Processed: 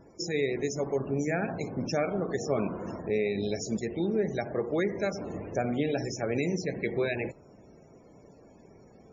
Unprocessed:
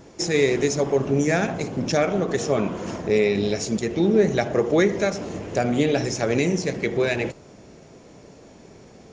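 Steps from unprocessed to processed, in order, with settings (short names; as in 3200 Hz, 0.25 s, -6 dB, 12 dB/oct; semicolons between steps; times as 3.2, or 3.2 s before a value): vocal rider within 3 dB 0.5 s; loudest bins only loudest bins 64; gain -8 dB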